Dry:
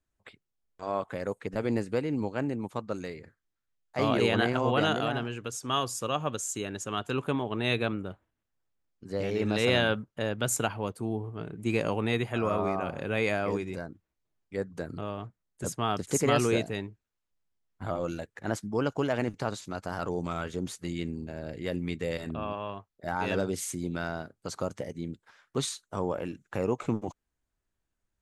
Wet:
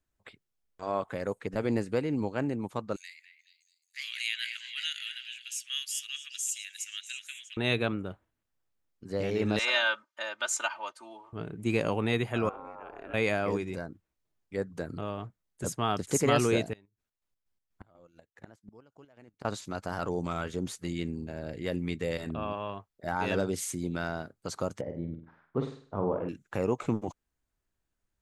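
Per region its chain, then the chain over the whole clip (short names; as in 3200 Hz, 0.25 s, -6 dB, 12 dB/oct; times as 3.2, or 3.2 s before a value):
2.96–7.57 steep high-pass 1900 Hz 48 dB/oct + high shelf 9000 Hz +5 dB + delay with a stepping band-pass 0.215 s, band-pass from 2400 Hz, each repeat 0.7 oct, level -9 dB
9.59–11.33 Chebyshev band-pass 1000–6300 Hz + comb 3.3 ms, depth 94%
12.49–13.14 three-band isolator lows -16 dB, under 430 Hz, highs -14 dB, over 2100 Hz + compressor 12:1, threshold -36 dBFS + ring modulator 140 Hz
16.73–19.45 chopper 4.1 Hz, depth 60% + flipped gate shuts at -31 dBFS, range -25 dB
24.81–26.29 LPF 1200 Hz + flutter echo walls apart 8.4 m, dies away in 0.46 s
whole clip: dry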